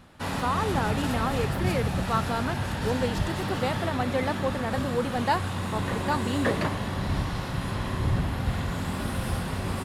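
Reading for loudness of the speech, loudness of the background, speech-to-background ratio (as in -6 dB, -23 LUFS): -30.5 LUFS, -30.0 LUFS, -0.5 dB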